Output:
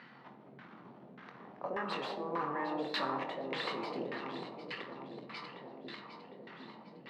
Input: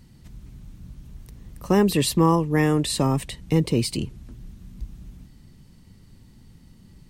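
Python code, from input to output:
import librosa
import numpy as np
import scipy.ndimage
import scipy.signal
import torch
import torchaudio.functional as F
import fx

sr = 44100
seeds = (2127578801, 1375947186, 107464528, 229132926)

p1 = scipy.signal.sosfilt(scipy.signal.butter(4, 4400.0, 'lowpass', fs=sr, output='sos'), x)
p2 = fx.over_compress(p1, sr, threshold_db=-28.0, ratio=-1.0)
p3 = fx.peak_eq(p2, sr, hz=310.0, db=-7.5, octaves=1.1)
p4 = fx.doubler(p3, sr, ms=23.0, db=-6)
p5 = p4 + fx.echo_alternate(p4, sr, ms=378, hz=870.0, feedback_pct=77, wet_db=-5.5, dry=0)
p6 = 10.0 ** (-29.0 / 20.0) * np.tanh(p5 / 10.0 ** (-29.0 / 20.0))
p7 = scipy.signal.sosfilt(scipy.signal.butter(4, 220.0, 'highpass', fs=sr, output='sos'), p6)
p8 = fx.tilt_eq(p7, sr, slope=3.5)
p9 = fx.rev_plate(p8, sr, seeds[0], rt60_s=1.7, hf_ratio=0.4, predelay_ms=0, drr_db=4.5)
p10 = fx.filter_lfo_lowpass(p9, sr, shape='saw_down', hz=1.7, low_hz=520.0, high_hz=1700.0, q=1.9)
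y = p10 * 10.0 ** (3.0 / 20.0)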